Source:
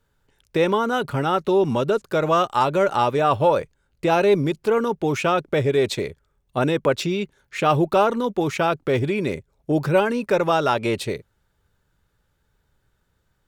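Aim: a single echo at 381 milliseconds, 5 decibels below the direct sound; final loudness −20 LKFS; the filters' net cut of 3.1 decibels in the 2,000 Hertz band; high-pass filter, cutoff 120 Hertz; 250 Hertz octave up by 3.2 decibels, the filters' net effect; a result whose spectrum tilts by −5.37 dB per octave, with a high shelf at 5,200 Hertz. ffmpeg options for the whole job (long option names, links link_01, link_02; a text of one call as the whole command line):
ffmpeg -i in.wav -af "highpass=120,equalizer=frequency=250:width_type=o:gain=5,equalizer=frequency=2000:width_type=o:gain=-5.5,highshelf=frequency=5200:gain=5.5,aecho=1:1:381:0.562,volume=-0.5dB" out.wav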